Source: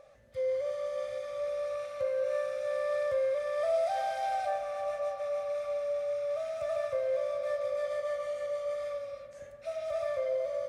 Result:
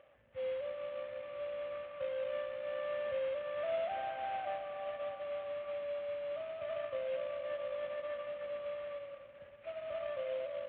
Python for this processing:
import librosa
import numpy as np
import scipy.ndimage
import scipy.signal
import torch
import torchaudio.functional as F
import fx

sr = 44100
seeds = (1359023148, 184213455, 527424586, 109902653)

y = fx.cvsd(x, sr, bps=16000)
y = scipy.signal.sosfilt(scipy.signal.butter(2, 58.0, 'highpass', fs=sr, output='sos'), y)
y = y * 10.0 ** (-6.5 / 20.0)